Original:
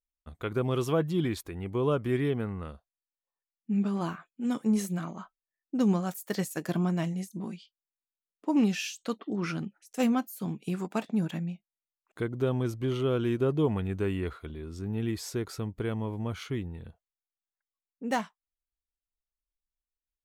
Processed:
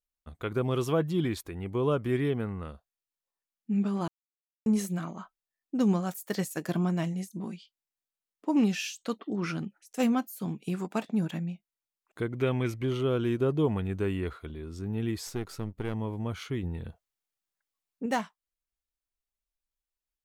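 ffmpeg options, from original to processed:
ffmpeg -i in.wav -filter_complex "[0:a]asettb=1/sr,asplit=3[link_01][link_02][link_03];[link_01]atrim=end=12.294[link_04];[link_02]atrim=start=12.29:end=12.83,asetpts=PTS-STARTPTS,afade=type=in:duration=0.004:curve=qsin,afade=type=out:start_time=0.536:duration=0.004:curve=qsin,equalizer=frequency=2200:width=2:gain=14.5[link_05];[link_03]atrim=start=12.826[link_06];[link_04][link_05]acrossfade=duration=0.004:curve1=hsin:curve2=qsin[link_07];[link_07][link_06]acrossfade=duration=0.004:curve1=qsin:curve2=hsin,asettb=1/sr,asplit=3[link_08][link_09][link_10];[link_08]atrim=end=15.274[link_11];[link_09]atrim=start=15.27:end=15.94,asetpts=PTS-STARTPTS,afade=type=in:duration=0.004:curve=qsin,afade=type=out:start_time=0.666:duration=0.004:curve=qsin,aeval=exprs='if(lt(val(0),0),0.447*val(0),val(0))':channel_layout=same[link_12];[link_10]atrim=start=15.936[link_13];[link_11][link_12]acrossfade=duration=0.004:curve1=hsin:curve2=qsin[link_14];[link_14][link_13]acrossfade=duration=0.004:curve1=qsin:curve2=hsin,asettb=1/sr,asplit=3[link_15][link_16][link_17];[link_15]atrim=end=16.634[link_18];[link_16]atrim=start=16.63:end=18.06,asetpts=PTS-STARTPTS,afade=type=in:duration=0.004:curve=qsin,afade=type=out:start_time=1.426:duration=0.004:curve=qsin,acontrast=29[link_19];[link_17]atrim=start=18.056[link_20];[link_18][link_19]acrossfade=duration=0.004:curve1=hsin:curve2=qsin[link_21];[link_21][link_20]acrossfade=duration=0.004:curve1=qsin:curve2=hsin,asplit=3[link_22][link_23][link_24];[link_22]atrim=end=4.08,asetpts=PTS-STARTPTS,afade=type=out:start_time=4.076:duration=0.004:curve=hsin[link_25];[link_23]atrim=start=4.08:end=4.66,asetpts=PTS-STARTPTS,volume=0[link_26];[link_24]atrim=start=4.66,asetpts=PTS-STARTPTS,afade=type=in:duration=0.004:curve=hsin[link_27];[link_25][link_26][link_27]concat=n=3:v=0:a=1" out.wav

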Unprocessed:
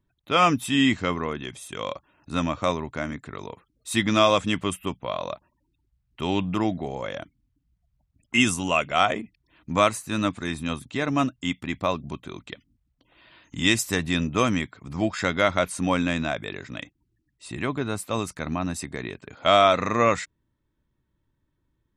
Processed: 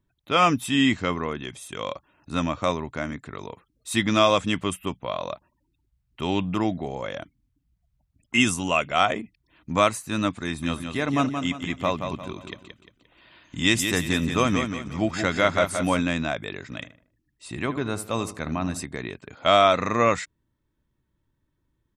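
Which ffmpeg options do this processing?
ffmpeg -i in.wav -filter_complex "[0:a]asplit=3[link_01][link_02][link_03];[link_01]afade=type=out:start_time=10.62:duration=0.02[link_04];[link_02]aecho=1:1:175|350|525|700:0.447|0.161|0.0579|0.0208,afade=type=in:start_time=10.62:duration=0.02,afade=type=out:start_time=16:duration=0.02[link_05];[link_03]afade=type=in:start_time=16:duration=0.02[link_06];[link_04][link_05][link_06]amix=inputs=3:normalize=0,asettb=1/sr,asplit=3[link_07][link_08][link_09];[link_07]atrim=end=16.634[link_10];[link_08]atrim=start=16.63:end=18.83,asetpts=PTS-STARTPTS,afade=type=in:duration=0.004:curve=qsin,afade=type=out:start_time=2.196:duration=0.004:curve=qsin,asplit=2[link_11][link_12];[link_12]adelay=77,lowpass=frequency=1900:poles=1,volume=-12dB,asplit=2[link_13][link_14];[link_14]adelay=77,lowpass=frequency=1900:poles=1,volume=0.41,asplit=2[link_15][link_16];[link_16]adelay=77,lowpass=frequency=1900:poles=1,volume=0.41,asplit=2[link_17][link_18];[link_18]adelay=77,lowpass=frequency=1900:poles=1,volume=0.41[link_19];[link_11][link_13][link_15][link_17][link_19]amix=inputs=5:normalize=0,atrim=end_sample=97020[link_20];[link_09]atrim=start=18.826[link_21];[link_10][link_20]acrossfade=duration=0.004:curve1=hsin:curve2=qsin[link_22];[link_22][link_21]acrossfade=duration=0.004:curve1=qsin:curve2=hsin" out.wav

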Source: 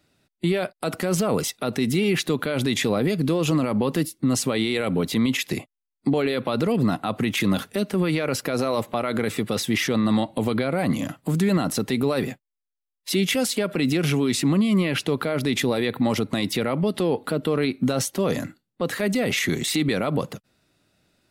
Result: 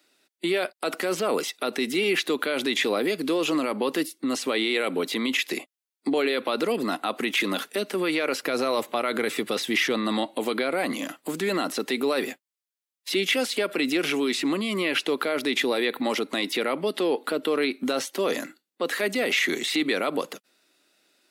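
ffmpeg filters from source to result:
ffmpeg -i in.wav -filter_complex "[0:a]asettb=1/sr,asplit=3[link_01][link_02][link_03];[link_01]atrim=end=8.404[link_04];[link_02]atrim=start=8.4:end=10.26,asetpts=PTS-STARTPTS,afade=type=in:duration=0.004:curve=qsin,afade=type=out:start_time=1.856:duration=0.004:curve=qsin,equalizer=frequency=130:width_type=o:width=0.77:gain=10[link_05];[link_03]atrim=start=10.256[link_06];[link_04][link_05]acrossfade=duration=0.004:curve1=hsin:curve2=qsin[link_07];[link_07][link_06]acrossfade=duration=0.004:curve1=qsin:curve2=hsin,highpass=frequency=310:width=0.5412,highpass=frequency=310:width=1.3066,acrossover=split=3800[link_08][link_09];[link_09]acompressor=threshold=-39dB:ratio=4:attack=1:release=60[link_10];[link_08][link_10]amix=inputs=2:normalize=0,equalizer=frequency=640:width_type=o:width=2.3:gain=-6,volume=4.5dB" out.wav

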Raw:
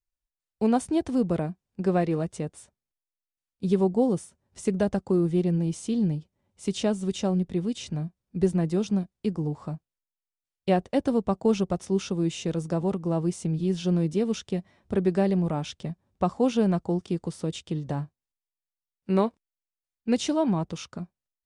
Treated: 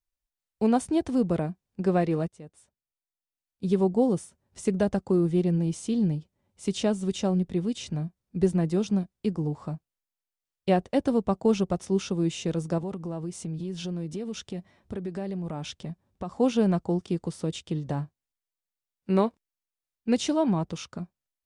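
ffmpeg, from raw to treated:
ffmpeg -i in.wav -filter_complex "[0:a]asettb=1/sr,asplit=3[link_01][link_02][link_03];[link_01]atrim=end=12.784[link_04];[link_02]atrim=start=12.78:end=16.37,asetpts=PTS-STARTPTS,afade=type=in:duration=0.004:curve=qsin,afade=type=out:start_time=3.586:duration=0.004:curve=qsin,acompressor=threshold=-31dB:ratio=4:attack=3.2:release=140:knee=1:detection=peak[link_05];[link_03]atrim=start=16.366[link_06];[link_04][link_05]acrossfade=duration=0.004:curve1=hsin:curve2=qsin[link_07];[link_07][link_06]acrossfade=duration=0.004:curve1=qsin:curve2=hsin,asplit=2[link_08][link_09];[link_08]atrim=end=2.28,asetpts=PTS-STARTPTS,afade=type=out:start_time=2.276:duration=0.004:curve=hsin:silence=0.141254[link_10];[link_09]atrim=start=2.28,asetpts=PTS-STARTPTS,afade=type=in:duration=1.67:silence=0.141254[link_11];[link_10][link_11]concat=n=2:v=0:a=1" out.wav

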